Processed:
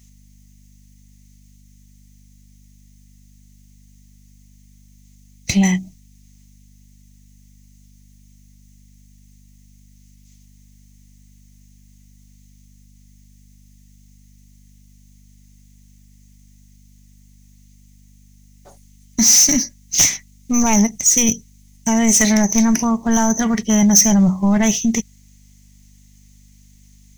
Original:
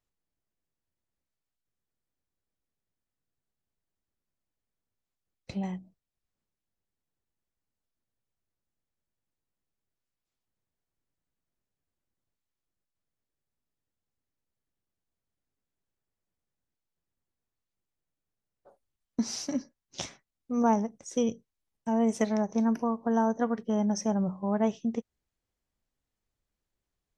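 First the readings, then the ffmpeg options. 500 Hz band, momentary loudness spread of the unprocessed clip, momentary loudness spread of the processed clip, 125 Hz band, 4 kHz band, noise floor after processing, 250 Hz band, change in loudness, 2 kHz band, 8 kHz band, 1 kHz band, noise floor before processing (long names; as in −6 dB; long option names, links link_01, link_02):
+4.5 dB, 13 LU, 11 LU, +15.5 dB, +21.5 dB, −49 dBFS, +12.5 dB, +15.0 dB, +19.0 dB, +29.5 dB, +7.5 dB, below −85 dBFS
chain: -af "apsyclip=27.5dB,lowshelf=frequency=110:gain=10,aeval=exprs='val(0)+0.02*(sin(2*PI*50*n/s)+sin(2*PI*2*50*n/s)/2+sin(2*PI*3*50*n/s)/3+sin(2*PI*4*50*n/s)/4+sin(2*PI*5*50*n/s)/5)':channel_layout=same,equalizer=frequency=200:width_type=o:width=0.33:gain=3,equalizer=frequency=500:width_type=o:width=0.33:gain=-10,equalizer=frequency=2000:width_type=o:width=0.33:gain=8,equalizer=frequency=6300:width_type=o:width=0.33:gain=12,aexciter=amount=2.6:drive=9.2:freq=2100,volume=-14dB"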